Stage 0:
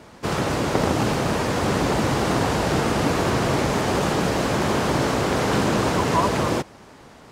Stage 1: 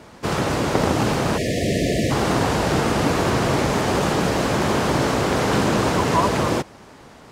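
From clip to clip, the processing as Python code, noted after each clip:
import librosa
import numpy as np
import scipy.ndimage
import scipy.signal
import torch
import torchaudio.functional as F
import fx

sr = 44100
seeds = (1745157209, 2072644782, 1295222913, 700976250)

y = fx.spec_erase(x, sr, start_s=1.38, length_s=0.73, low_hz=720.0, high_hz=1700.0)
y = y * librosa.db_to_amplitude(1.5)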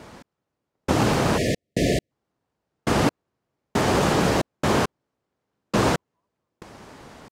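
y = fx.step_gate(x, sr, bpm=68, pattern='x...xxx.x....', floor_db=-60.0, edge_ms=4.5)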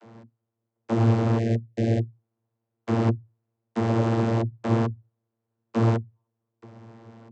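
y = fx.vocoder(x, sr, bands=32, carrier='saw', carrier_hz=114.0)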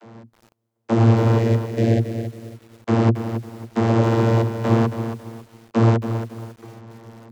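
y = fx.echo_crushed(x, sr, ms=274, feedback_pct=35, bits=8, wet_db=-9)
y = y * librosa.db_to_amplitude(5.5)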